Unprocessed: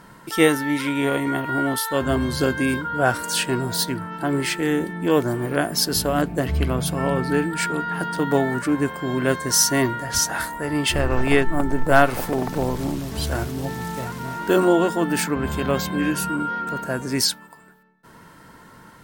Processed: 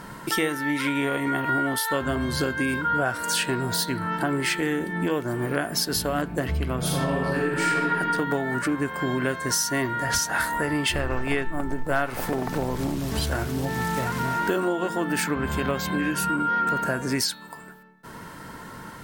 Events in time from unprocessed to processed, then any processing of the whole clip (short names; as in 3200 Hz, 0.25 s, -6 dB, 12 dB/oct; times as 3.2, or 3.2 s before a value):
6.78–7.9 reverb throw, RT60 1.4 s, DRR -5 dB
whole clip: compressor 6:1, threshold -30 dBFS; de-hum 166.8 Hz, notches 26; dynamic EQ 1700 Hz, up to +4 dB, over -45 dBFS, Q 1; gain +6.5 dB